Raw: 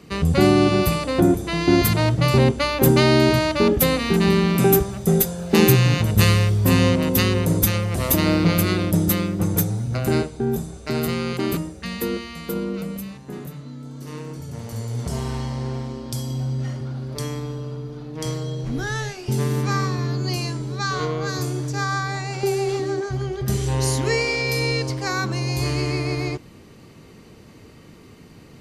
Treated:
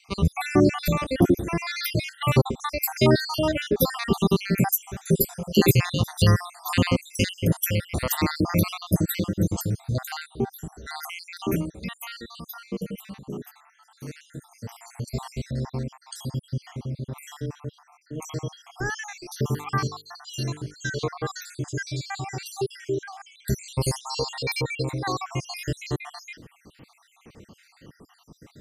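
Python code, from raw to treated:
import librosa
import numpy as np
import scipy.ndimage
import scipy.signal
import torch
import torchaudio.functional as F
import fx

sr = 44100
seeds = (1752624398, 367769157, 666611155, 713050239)

y = fx.spec_dropout(x, sr, seeds[0], share_pct=66)
y = fx.hum_notches(y, sr, base_hz=50, count=10, at=(19.5, 20.74))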